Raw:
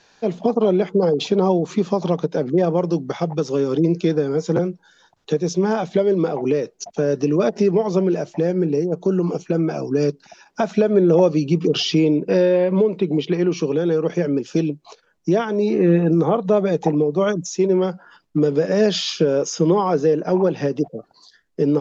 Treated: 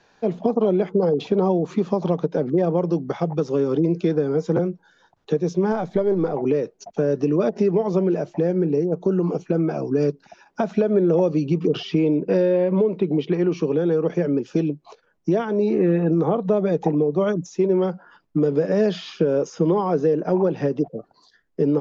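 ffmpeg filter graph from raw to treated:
-filter_complex "[0:a]asettb=1/sr,asplit=3[s0][s1][s2];[s0]atrim=end=5.724[s3];[s1]atrim=start=5.72:end=6.34,asetpts=PTS-STARTPTS,afade=t=in:d=0.004:c=qsin,afade=t=out:st=0.616:d=0.004:c=qsin,aeval=exprs='if(lt(val(0),0),0.708*val(0),val(0))':c=same,equalizer=f=2800:t=o:w=0.26:g=-10.5[s4];[s2]atrim=start=6.336[s5];[s3][s4]acrossfade=d=0.004:c1=hsin:c2=qsin[s6];[s6][s5]acrossfade=d=0.004:c1=qsin:c2=hsin,highshelf=f=2800:g=-11.5,acrossover=split=500|2800[s7][s8][s9];[s7]acompressor=threshold=0.141:ratio=4[s10];[s8]acompressor=threshold=0.0708:ratio=4[s11];[s9]acompressor=threshold=0.00891:ratio=4[s12];[s10][s11][s12]amix=inputs=3:normalize=0"

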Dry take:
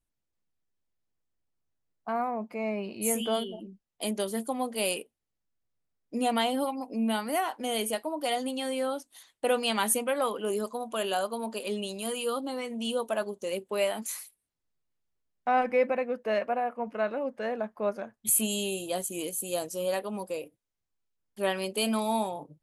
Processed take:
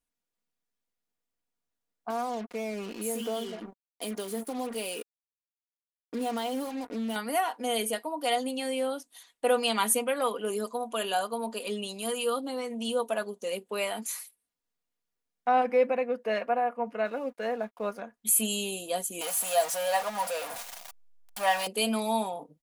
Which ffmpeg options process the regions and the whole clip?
-filter_complex "[0:a]asettb=1/sr,asplit=3[s0][s1][s2];[s0]atrim=end=2.104[s3];[s1]atrim=start=2.1:end=7.16,asetpts=PTS-STARTPTS,afade=t=in:d=0.004:c=qsin,afade=t=out:st=5.056:d=0.004:c=qsin,acompressor=threshold=0.02:ratio=2.5:attack=3.2:release=140:knee=1:detection=peak,acrusher=bits=6:mix=0:aa=0.5,equalizer=f=340:w=1.3:g=5.5[s4];[s2]atrim=start=7.156[s5];[s3][s4]acrossfade=d=0.004:c1=hsin:c2=qsin[s6];[s6][s5]acrossfade=d=0.004:c1=qsin:c2=hsin,asettb=1/sr,asplit=3[s7][s8][s9];[s7]atrim=end=17.054[s10];[s8]atrim=start=17.05:end=17.99,asetpts=PTS-STARTPTS,afade=t=in:d=0.004:c=qsin,afade=t=out:st=0.936:d=0.004:c=qsin,highpass=84,highshelf=f=10000:g=11.5,aeval=exprs='sgn(val(0))*max(abs(val(0))-0.0015,0)':c=same[s11];[s9]atrim=start=17.986[s12];[s10][s11]acrossfade=d=0.004:c1=hsin:c2=qsin[s13];[s13][s12]acrossfade=d=0.004:c1=qsin:c2=hsin,asettb=1/sr,asplit=3[s14][s15][s16];[s14]atrim=end=19.214[s17];[s15]atrim=start=19.21:end=21.67,asetpts=PTS-STARTPTS,afade=t=in:d=0.004:c=qsin,afade=t=out:st=2.456:d=0.004:c=qsin,aeval=exprs='val(0)+0.5*0.0316*sgn(val(0))':c=same,lowshelf=f=510:t=q:w=3:g=-10[s18];[s16]atrim=start=21.666[s19];[s17][s18]acrossfade=d=0.004:c1=hsin:c2=qsin[s20];[s20][s19]acrossfade=d=0.004:c1=qsin:c2=hsin,lowshelf=f=170:g=-10.5,aecho=1:1:4.2:0.46"

